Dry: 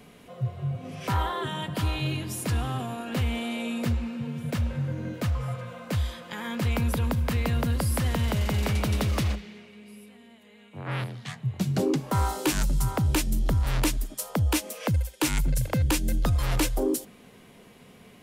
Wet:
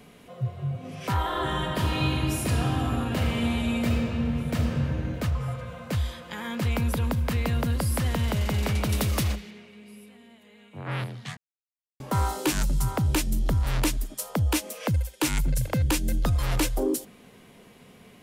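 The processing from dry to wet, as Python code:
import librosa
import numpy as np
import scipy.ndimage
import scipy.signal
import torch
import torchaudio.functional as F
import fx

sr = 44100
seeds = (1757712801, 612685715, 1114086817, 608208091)

y = fx.reverb_throw(x, sr, start_s=1.19, length_s=3.62, rt60_s=3.0, drr_db=-1.0)
y = fx.high_shelf(y, sr, hz=7700.0, db=11.5, at=(8.89, 9.51))
y = fx.edit(y, sr, fx.silence(start_s=11.37, length_s=0.63), tone=tone)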